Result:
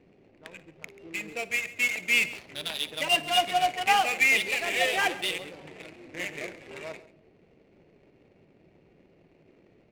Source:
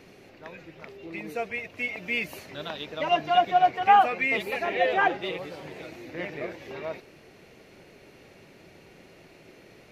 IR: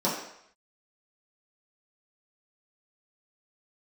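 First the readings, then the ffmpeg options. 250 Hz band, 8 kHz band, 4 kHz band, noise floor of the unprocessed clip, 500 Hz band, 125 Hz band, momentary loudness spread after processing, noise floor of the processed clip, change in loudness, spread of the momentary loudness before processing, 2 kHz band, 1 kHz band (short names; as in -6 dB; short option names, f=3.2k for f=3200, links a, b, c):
-4.5 dB, n/a, +7.5 dB, -53 dBFS, -5.5 dB, -4.5 dB, 20 LU, -62 dBFS, +0.5 dB, 22 LU, +3.5 dB, -5.5 dB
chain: -filter_complex "[0:a]aexciter=amount=4.1:drive=6.7:freq=2k,acrusher=bits=3:mode=log:mix=0:aa=0.000001,adynamicsmooth=sensitivity=4.5:basefreq=500,aecho=1:1:58|136:0.106|0.126,asplit=2[a][b];[1:a]atrim=start_sample=2205,asetrate=35280,aresample=44100[c];[b][c]afir=irnorm=-1:irlink=0,volume=-32dB[d];[a][d]amix=inputs=2:normalize=0,volume=-6dB"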